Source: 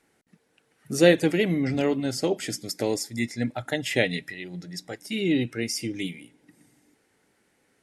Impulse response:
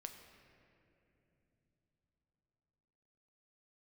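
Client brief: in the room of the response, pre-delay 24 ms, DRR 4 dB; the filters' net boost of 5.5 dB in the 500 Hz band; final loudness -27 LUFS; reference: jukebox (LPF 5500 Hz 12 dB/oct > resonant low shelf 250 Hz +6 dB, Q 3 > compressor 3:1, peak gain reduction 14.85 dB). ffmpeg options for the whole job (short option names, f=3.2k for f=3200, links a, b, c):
-filter_complex "[0:a]equalizer=f=500:t=o:g=8.5,asplit=2[a][b];[1:a]atrim=start_sample=2205,adelay=24[c];[b][c]afir=irnorm=-1:irlink=0,volume=0.5dB[d];[a][d]amix=inputs=2:normalize=0,lowpass=5.5k,lowshelf=f=250:t=q:w=3:g=6,acompressor=threshold=-26dB:ratio=3,volume=2dB"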